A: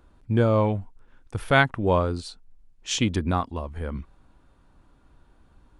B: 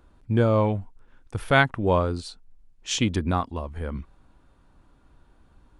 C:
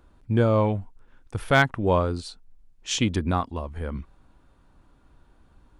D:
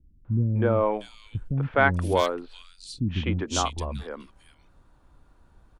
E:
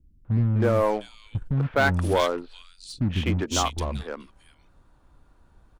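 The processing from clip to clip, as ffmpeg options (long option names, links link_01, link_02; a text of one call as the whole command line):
ffmpeg -i in.wav -af anull out.wav
ffmpeg -i in.wav -af "volume=8dB,asoftclip=hard,volume=-8dB" out.wav
ffmpeg -i in.wav -filter_complex "[0:a]acrossover=split=260|2700[link_01][link_02][link_03];[link_02]adelay=250[link_04];[link_03]adelay=640[link_05];[link_01][link_04][link_05]amix=inputs=3:normalize=0" out.wav
ffmpeg -i in.wav -filter_complex "[0:a]asplit=2[link_01][link_02];[link_02]acrusher=bits=4:mix=0:aa=0.5,volume=-8dB[link_03];[link_01][link_03]amix=inputs=2:normalize=0,asoftclip=type=tanh:threshold=-13dB" out.wav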